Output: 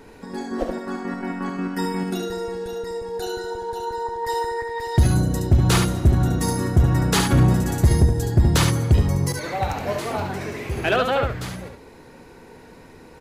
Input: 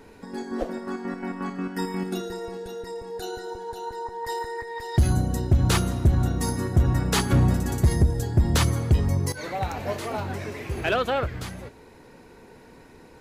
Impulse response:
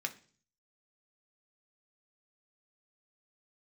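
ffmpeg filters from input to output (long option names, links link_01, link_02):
-af "aecho=1:1:71:0.531,volume=3dB"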